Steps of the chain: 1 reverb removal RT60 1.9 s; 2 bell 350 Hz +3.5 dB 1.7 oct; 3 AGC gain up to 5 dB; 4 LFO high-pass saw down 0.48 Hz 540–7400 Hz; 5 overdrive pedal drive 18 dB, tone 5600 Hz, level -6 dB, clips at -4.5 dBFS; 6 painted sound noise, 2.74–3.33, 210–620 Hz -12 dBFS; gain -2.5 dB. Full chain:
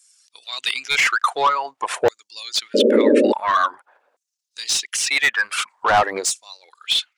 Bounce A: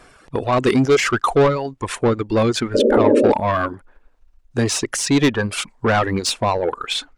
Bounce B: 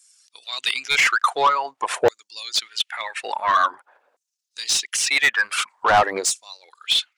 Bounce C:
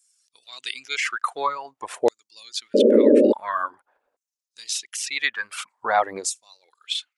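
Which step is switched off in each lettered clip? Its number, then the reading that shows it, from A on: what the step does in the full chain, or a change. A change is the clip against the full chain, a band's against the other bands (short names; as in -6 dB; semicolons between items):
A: 4, 250 Hz band +7.5 dB; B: 6, 250 Hz band -16.0 dB; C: 5, crest factor change +3.0 dB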